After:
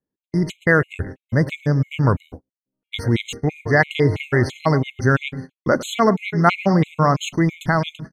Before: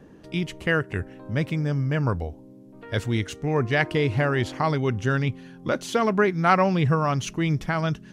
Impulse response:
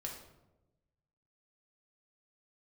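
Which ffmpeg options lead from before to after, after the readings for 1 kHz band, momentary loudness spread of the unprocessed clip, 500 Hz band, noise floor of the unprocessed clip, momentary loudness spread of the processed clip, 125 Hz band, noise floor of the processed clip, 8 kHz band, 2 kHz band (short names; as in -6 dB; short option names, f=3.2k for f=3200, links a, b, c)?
+3.5 dB, 9 LU, +4.0 dB, -48 dBFS, 9 LU, +4.5 dB, under -85 dBFS, +3.5 dB, +5.0 dB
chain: -filter_complex "[0:a]asplit=2[a][b];[b]adelay=107,lowpass=f=2k:p=1,volume=-14.5dB,asplit=2[c][d];[d]adelay=107,lowpass=f=2k:p=1,volume=0.28,asplit=2[e][f];[f]adelay=107,lowpass=f=2k:p=1,volume=0.28[g];[a][c][e][g]amix=inputs=4:normalize=0,agate=range=-45dB:threshold=-36dB:ratio=16:detection=peak,afftfilt=real='re*gt(sin(2*PI*3*pts/sr)*(1-2*mod(floor(b*sr/1024/2100),2)),0)':imag='im*gt(sin(2*PI*3*pts/sr)*(1-2*mod(floor(b*sr/1024/2100),2)),0)':win_size=1024:overlap=0.75,volume=7.5dB"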